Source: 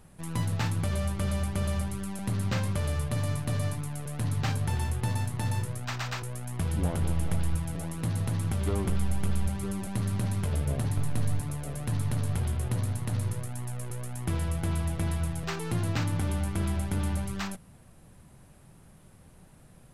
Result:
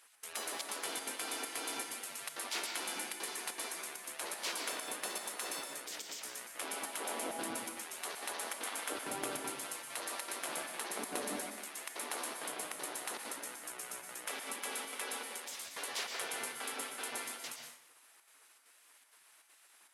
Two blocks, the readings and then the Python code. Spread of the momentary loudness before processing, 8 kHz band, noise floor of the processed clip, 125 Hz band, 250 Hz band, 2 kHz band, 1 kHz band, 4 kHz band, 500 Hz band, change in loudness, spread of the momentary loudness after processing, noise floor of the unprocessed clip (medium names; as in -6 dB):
6 LU, +2.0 dB, -64 dBFS, -40.0 dB, -17.0 dB, -0.5 dB, -3.0 dB, +1.5 dB, -6.5 dB, -8.5 dB, 5 LU, -54 dBFS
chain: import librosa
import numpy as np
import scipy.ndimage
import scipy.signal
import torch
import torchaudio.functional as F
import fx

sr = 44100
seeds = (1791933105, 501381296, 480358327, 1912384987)

y = fx.spec_gate(x, sr, threshold_db=-25, keep='weak')
y = scipy.signal.sosfilt(scipy.signal.butter(2, 170.0, 'highpass', fs=sr, output='sos'), y)
y = fx.step_gate(y, sr, bpm=197, pattern='xx.xxxxx.xx', floor_db=-60.0, edge_ms=4.5)
y = fx.rev_plate(y, sr, seeds[0], rt60_s=0.69, hf_ratio=0.85, predelay_ms=105, drr_db=3.5)
y = F.gain(torch.from_numpy(y), 2.5).numpy()